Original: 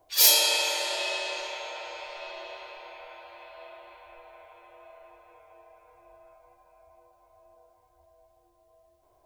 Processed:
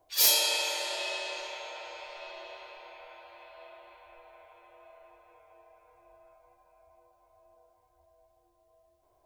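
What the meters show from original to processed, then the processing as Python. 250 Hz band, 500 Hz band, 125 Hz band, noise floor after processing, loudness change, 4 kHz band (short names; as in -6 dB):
-3.5 dB, -4.0 dB, n/a, -69 dBFS, -4.0 dB, -4.0 dB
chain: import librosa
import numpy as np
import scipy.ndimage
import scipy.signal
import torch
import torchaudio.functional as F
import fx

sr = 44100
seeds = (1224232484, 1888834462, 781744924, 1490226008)

y = 10.0 ** (-9.0 / 20.0) * (np.abs((x / 10.0 ** (-9.0 / 20.0) + 3.0) % 4.0 - 2.0) - 1.0)
y = y * 10.0 ** (-4.0 / 20.0)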